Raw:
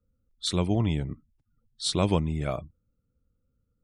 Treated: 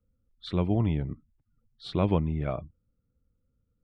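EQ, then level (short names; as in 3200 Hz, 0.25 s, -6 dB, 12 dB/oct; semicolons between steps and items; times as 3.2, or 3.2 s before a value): air absorption 400 m; 0.0 dB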